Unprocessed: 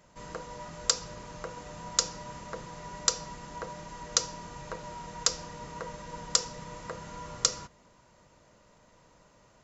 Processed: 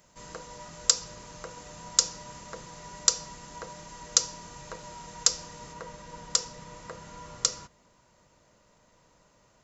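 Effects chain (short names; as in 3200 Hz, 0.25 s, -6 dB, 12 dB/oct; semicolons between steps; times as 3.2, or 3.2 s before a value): high shelf 4300 Hz +11 dB, from 5.73 s +4.5 dB; gain -3 dB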